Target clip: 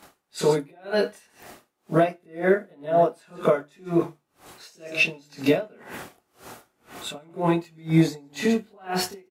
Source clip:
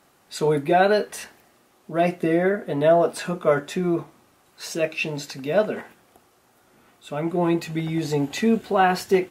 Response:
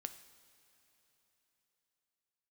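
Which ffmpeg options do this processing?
-filter_complex "[0:a]bandreject=f=50:t=h:w=6,bandreject=f=100:t=h:w=6,bandreject=f=150:t=h:w=6,bandreject=f=200:t=h:w=6,bandreject=f=250:t=h:w=6,bandreject=f=300:t=h:w=6,bandreject=f=350:t=h:w=6,acompressor=threshold=-25dB:ratio=4,alimiter=limit=-23.5dB:level=0:latency=1:release=432,asettb=1/sr,asplit=3[a][b][c];[a]atrim=end=5.624[d];[b]atrim=start=5.62:end=7.16,asetpts=PTS-STARTPTS,afade=t=in:d=0.004:c=qsin,afade=t=out:st=1.536:d=0.004:c=qsin,acontrast=29[e];[c]atrim=start=7.156[f];[d][e]acrossfade=d=0.004:c1=hsin:c2=qsin[g];[g][f]acrossfade=d=0.004:c1=qsin:c2=hsin,asettb=1/sr,asplit=3[h][i][j];[h]atrim=end=7.714[k];[i]atrim=start=7.71:end=8.28,asetpts=PTS-STARTPTS,afade=t=in:d=0.004:c=qsin,afade=t=out:st=0.566:d=0.004:c=qsin,asuperstop=centerf=2900:order=4:qfactor=6.9[l];[j]atrim=start=8.276[m];[k][l]acrossfade=d=0.004:c1=hsin:c2=qsin[n];[n][m]acrossfade=d=0.004:c1=qsin:c2=hsin,aecho=1:1:136:0.141,asplit=2[o][p];[1:a]atrim=start_sample=2205,atrim=end_sample=3528,adelay=25[q];[p][q]afir=irnorm=-1:irlink=0,volume=11.5dB[r];[o][r]amix=inputs=2:normalize=0,aeval=exprs='val(0)*pow(10,-34*(0.5-0.5*cos(2*PI*2*n/s))/20)':c=same,volume=5.5dB"

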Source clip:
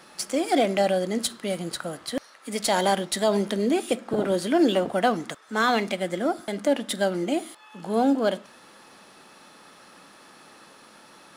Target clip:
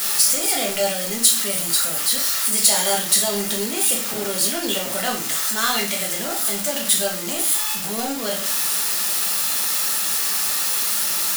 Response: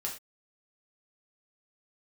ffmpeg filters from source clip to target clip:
-filter_complex "[0:a]aeval=exprs='val(0)+0.5*0.0596*sgn(val(0))':c=same[a];[1:a]atrim=start_sample=2205[b];[a][b]afir=irnorm=-1:irlink=0,crystalizer=i=9:c=0,volume=-10dB"

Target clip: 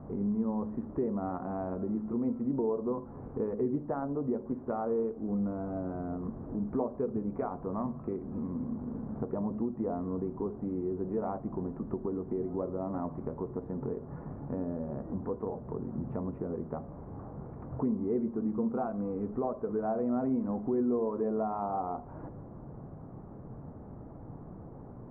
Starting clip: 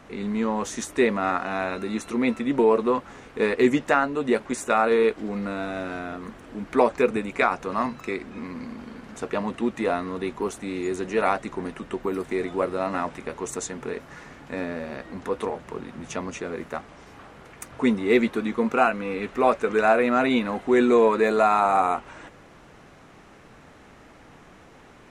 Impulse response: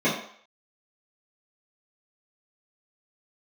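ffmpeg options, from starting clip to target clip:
-filter_complex "[0:a]lowpass=f=1k:w=0.5412,lowpass=f=1k:w=1.3066,lowshelf=f=410:g=7,acompressor=threshold=-34dB:ratio=2.5,equalizer=f=120:w=1.2:g=7,asplit=2[a][b];[1:a]atrim=start_sample=2205,adelay=42[c];[b][c]afir=irnorm=-1:irlink=0,volume=-31.5dB[d];[a][d]amix=inputs=2:normalize=0,volume=-2.5dB"

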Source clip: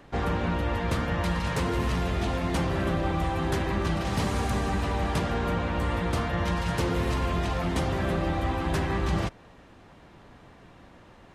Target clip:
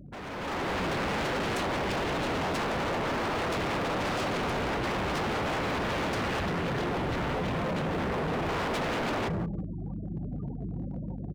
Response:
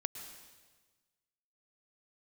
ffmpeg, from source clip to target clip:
-filter_complex "[0:a]alimiter=limit=-22.5dB:level=0:latency=1:release=407,equalizer=f=160:t=o:w=1:g=12,bandreject=f=1k:w=27,aecho=1:1:173|346|519:0.355|0.0887|0.0222,asettb=1/sr,asplit=3[a][b][c];[a]atrim=end=6.404[d];[b]atrim=start=6.4:end=8.49,asetpts=PTS-STARTPTS,afade=t=in:d=0.004:c=qsin,afade=t=out:st=2.086:d=0.004:c=qsin,flanger=delay=18.5:depth=7.8:speed=1.3[e];[c]atrim=start=8.486[f];[d][e]acrossfade=d=0.004:c1=hsin:c2=qsin[g];[g][f]acrossfade=d=0.004:c1=qsin:c2=hsin,afftfilt=real='re*gte(hypot(re,im),0.01)':imag='im*gte(hypot(re,im),0.01)':win_size=1024:overlap=0.75,aeval=exprs='val(0)+0.00501*(sin(2*PI*50*n/s)+sin(2*PI*2*50*n/s)/2+sin(2*PI*3*50*n/s)/3+sin(2*PI*4*50*n/s)/4+sin(2*PI*5*50*n/s)/5)':c=same,aeval=exprs='0.0299*(abs(mod(val(0)/0.0299+3,4)-2)-1)':c=same,highpass=f=75:p=1,asoftclip=type=hard:threshold=-39.5dB,dynaudnorm=f=110:g=9:m=11dB"

